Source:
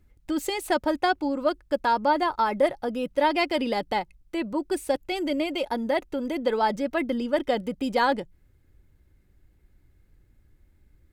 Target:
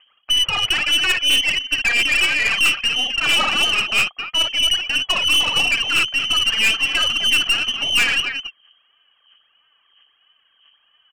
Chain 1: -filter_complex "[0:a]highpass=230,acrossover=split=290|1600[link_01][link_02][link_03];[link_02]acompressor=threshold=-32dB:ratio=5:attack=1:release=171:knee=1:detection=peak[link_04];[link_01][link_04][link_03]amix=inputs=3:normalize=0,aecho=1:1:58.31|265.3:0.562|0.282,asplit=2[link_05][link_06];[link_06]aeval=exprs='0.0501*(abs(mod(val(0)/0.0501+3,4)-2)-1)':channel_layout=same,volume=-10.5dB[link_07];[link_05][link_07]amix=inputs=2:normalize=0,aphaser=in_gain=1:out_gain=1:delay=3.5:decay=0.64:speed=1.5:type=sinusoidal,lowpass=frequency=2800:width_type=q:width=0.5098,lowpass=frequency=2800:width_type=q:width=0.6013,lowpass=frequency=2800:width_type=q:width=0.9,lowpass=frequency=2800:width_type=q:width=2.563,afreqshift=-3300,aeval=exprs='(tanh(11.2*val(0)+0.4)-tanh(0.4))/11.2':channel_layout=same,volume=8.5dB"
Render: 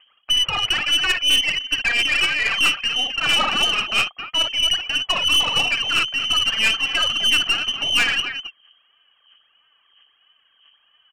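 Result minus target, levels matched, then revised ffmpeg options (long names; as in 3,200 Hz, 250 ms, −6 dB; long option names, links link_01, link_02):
downward compressor: peak gain reduction +6.5 dB
-filter_complex "[0:a]highpass=230,acrossover=split=290|1600[link_01][link_02][link_03];[link_02]acompressor=threshold=-24dB:ratio=5:attack=1:release=171:knee=1:detection=peak[link_04];[link_01][link_04][link_03]amix=inputs=3:normalize=0,aecho=1:1:58.31|265.3:0.562|0.282,asplit=2[link_05][link_06];[link_06]aeval=exprs='0.0501*(abs(mod(val(0)/0.0501+3,4)-2)-1)':channel_layout=same,volume=-10.5dB[link_07];[link_05][link_07]amix=inputs=2:normalize=0,aphaser=in_gain=1:out_gain=1:delay=3.5:decay=0.64:speed=1.5:type=sinusoidal,lowpass=frequency=2800:width_type=q:width=0.5098,lowpass=frequency=2800:width_type=q:width=0.6013,lowpass=frequency=2800:width_type=q:width=0.9,lowpass=frequency=2800:width_type=q:width=2.563,afreqshift=-3300,aeval=exprs='(tanh(11.2*val(0)+0.4)-tanh(0.4))/11.2':channel_layout=same,volume=8.5dB"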